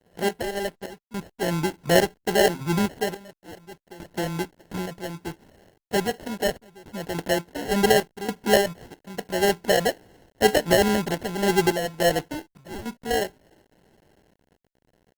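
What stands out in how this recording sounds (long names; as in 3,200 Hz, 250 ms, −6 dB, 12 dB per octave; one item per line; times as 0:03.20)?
aliases and images of a low sample rate 1,200 Hz, jitter 0%
sample-and-hold tremolo, depth 95%
a quantiser's noise floor 10 bits, dither none
Opus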